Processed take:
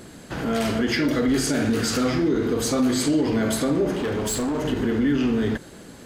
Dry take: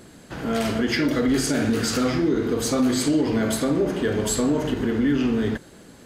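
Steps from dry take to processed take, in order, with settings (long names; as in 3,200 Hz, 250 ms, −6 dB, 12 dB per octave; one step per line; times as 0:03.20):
in parallel at +1.5 dB: brickwall limiter −24 dBFS, peak gain reduction 11.5 dB
0:03.93–0:04.65: on the sum: hard clipping −19 dBFS, distortion −18 dB
level −3 dB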